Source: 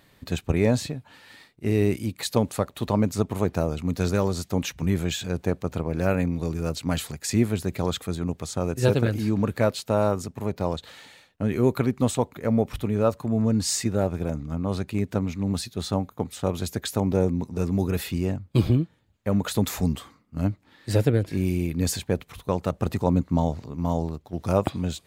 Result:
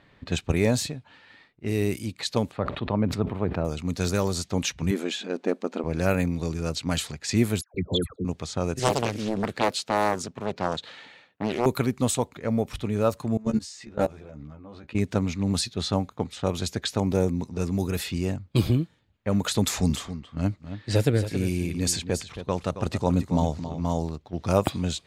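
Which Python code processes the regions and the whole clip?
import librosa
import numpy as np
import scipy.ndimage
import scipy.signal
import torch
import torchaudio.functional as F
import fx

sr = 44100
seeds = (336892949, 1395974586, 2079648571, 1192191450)

y = fx.chain(x, sr, fx.highpass(hz=58.0, slope=12),
    fx.air_absorb(metres=470.0),
    fx.sustainer(db_per_s=82.0), at=(2.51, 3.65))
y = fx.chain(y, sr, fx.self_delay(depth_ms=0.08),
    fx.brickwall_highpass(low_hz=200.0),
    fx.tilt_eq(slope=-2.0), at=(4.91, 5.84))
y = fx.chain(y, sr, fx.envelope_sharpen(power=3.0),
    fx.dispersion(late='lows', ms=134.0, hz=1100.0), at=(7.61, 8.25))
y = fx.chain(y, sr, fx.highpass(hz=140.0, slope=12),
    fx.doppler_dist(depth_ms=0.93), at=(8.79, 11.66))
y = fx.chain(y, sr, fx.low_shelf(hz=130.0, db=-6.5),
    fx.level_steps(step_db=23),
    fx.doubler(ms=14.0, db=-3.0), at=(13.37, 14.95))
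y = fx.chain(y, sr, fx.lowpass(hz=11000.0, slope=12),
    fx.echo_single(ms=273, db=-11.0), at=(19.62, 23.98))
y = fx.env_lowpass(y, sr, base_hz=2200.0, full_db=-18.5)
y = fx.high_shelf(y, sr, hz=2700.0, db=8.5)
y = fx.rider(y, sr, range_db=10, speed_s=2.0)
y = F.gain(torch.from_numpy(y), -2.0).numpy()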